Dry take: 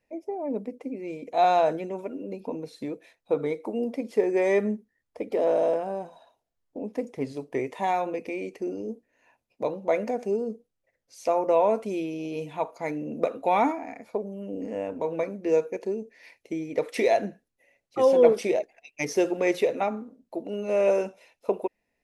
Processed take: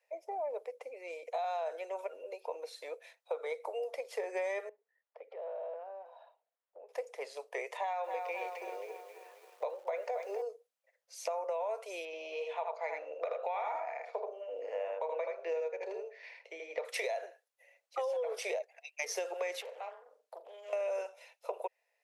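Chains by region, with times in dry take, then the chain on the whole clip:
4.69–6.89 s: compression 2:1, threshold -49 dBFS + distance through air 360 m
7.77–10.42 s: distance through air 93 m + hum notches 60/120/180/240/300/360/420 Hz + bit-crushed delay 267 ms, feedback 55%, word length 9-bit, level -10 dB
12.05–16.85 s: low-pass 3.8 kHz + de-hum 51.69 Hz, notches 31 + delay 79 ms -3.5 dB
19.61–20.73 s: compression 3:1, threshold -45 dBFS + flutter echo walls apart 7 m, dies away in 0.26 s + loudspeaker Doppler distortion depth 0.35 ms
whole clip: steep high-pass 490 Hz 48 dB/octave; peak limiter -20 dBFS; compression 6:1, threshold -33 dBFS

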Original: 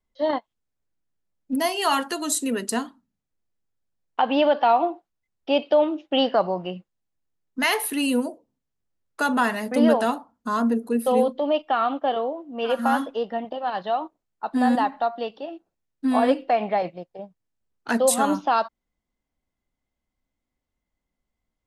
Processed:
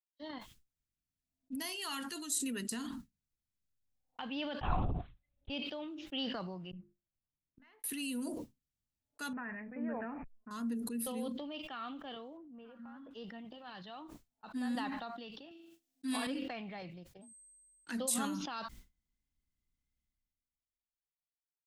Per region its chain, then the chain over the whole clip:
4.61–5.50 s: peaking EQ 770 Hz +3.5 dB 2 oct + LPC vocoder at 8 kHz whisper
6.71–7.84 s: low-pass 1.4 kHz + hum notches 50/100/150/200/250/300/350/400/450 Hz + inverted gate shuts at -31 dBFS, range -30 dB
9.33–10.51 s: hysteresis with a dead band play -42 dBFS + rippled Chebyshev low-pass 2.5 kHz, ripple 6 dB
12.37–13.11 s: low-pass 1.4 kHz + compression 4:1, threshold -32 dBFS
15.51–16.27 s: high-pass 160 Hz + treble shelf 2 kHz +11 dB + flutter echo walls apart 7.2 m, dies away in 0.38 s
17.21–17.91 s: frequency shift +39 Hz + whistle 8.3 kHz -51 dBFS
whole clip: expander -41 dBFS; amplifier tone stack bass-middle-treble 6-0-2; decay stretcher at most 25 dB/s; trim +3.5 dB

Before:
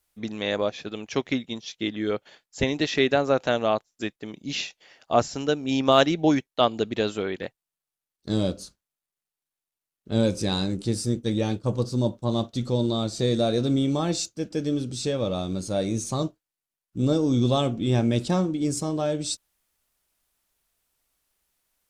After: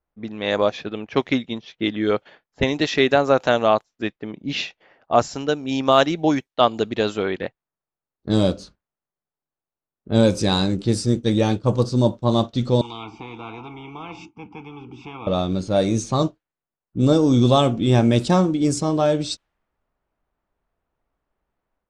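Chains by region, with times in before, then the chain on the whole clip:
12.81–15.27 s: vowel filter u + static phaser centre 2.8 kHz, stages 8 + spectrum-flattening compressor 10:1
whole clip: level-controlled noise filter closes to 1.1 kHz, open at -19.5 dBFS; dynamic bell 1 kHz, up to +4 dB, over -35 dBFS, Q 1.1; level rider gain up to 6 dB

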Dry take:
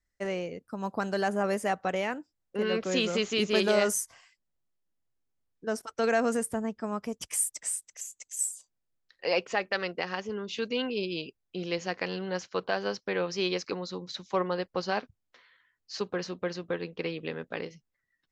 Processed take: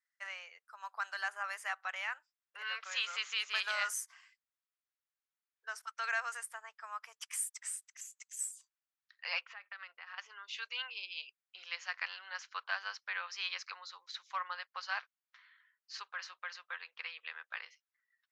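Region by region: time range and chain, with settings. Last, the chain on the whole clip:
9.41–10.18 s: compression 12:1, threshold -35 dBFS + distance through air 200 m
whole clip: inverse Chebyshev high-pass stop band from 270 Hz, stop band 70 dB; treble shelf 2.7 kHz -12 dB; trim +2.5 dB

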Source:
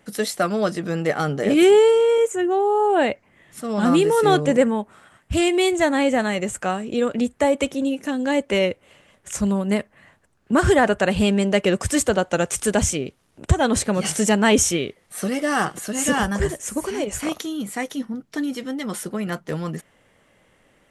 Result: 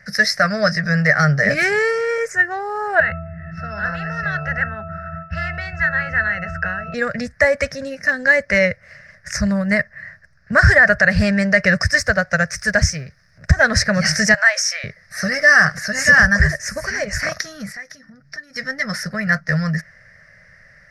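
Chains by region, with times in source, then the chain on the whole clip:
3.00–6.94 s: distance through air 85 m + pitch-class resonator E, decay 0.4 s + spectrum-flattening compressor 10:1
11.84–13.57 s: companding laws mixed up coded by mu + upward expansion, over -30 dBFS
14.34–14.84 s: steep high-pass 570 Hz 72 dB/octave + compression 2:1, threshold -27 dBFS
17.72–18.56 s: de-hum 142.2 Hz, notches 3 + compression 5:1, threshold -41 dBFS
whole clip: FFT filter 160 Hz 0 dB, 330 Hz -29 dB, 620 Hz -4 dB, 890 Hz -19 dB, 1.8 kHz +10 dB, 3.2 kHz -24 dB, 5.2 kHz +8 dB, 7.4 kHz -18 dB, 12 kHz -16 dB; loudness maximiser +12 dB; trim -1 dB

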